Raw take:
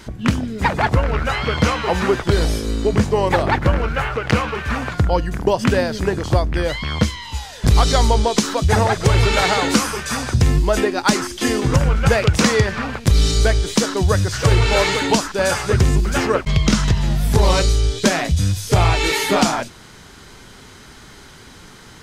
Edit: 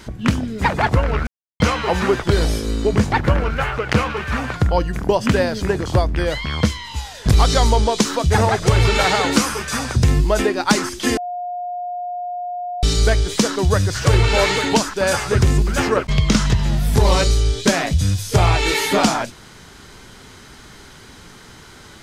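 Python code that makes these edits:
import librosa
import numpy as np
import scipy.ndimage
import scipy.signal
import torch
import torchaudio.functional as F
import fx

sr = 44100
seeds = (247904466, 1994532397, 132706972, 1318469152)

y = fx.edit(x, sr, fx.silence(start_s=1.27, length_s=0.33),
    fx.cut(start_s=3.12, length_s=0.38),
    fx.bleep(start_s=11.55, length_s=1.66, hz=713.0, db=-23.5), tone=tone)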